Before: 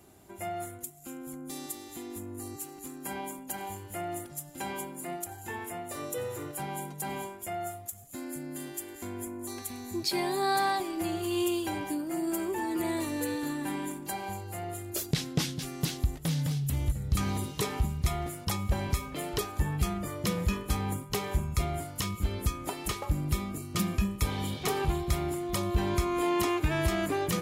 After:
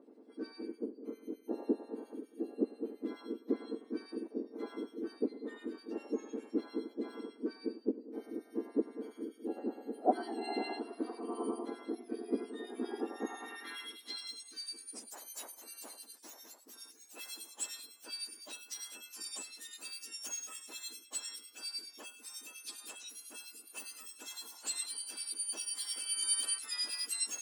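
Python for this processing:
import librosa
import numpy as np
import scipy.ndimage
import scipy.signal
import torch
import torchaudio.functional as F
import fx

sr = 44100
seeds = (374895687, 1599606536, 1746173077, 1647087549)

y = fx.octave_mirror(x, sr, pivot_hz=1800.0)
y = fx.harmonic_tremolo(y, sr, hz=9.9, depth_pct=70, crossover_hz=1900.0)
y = fx.filter_sweep_bandpass(y, sr, from_hz=490.0, to_hz=6800.0, start_s=12.99, end_s=14.37, q=1.3)
y = F.gain(torch.from_numpy(y), 4.5).numpy()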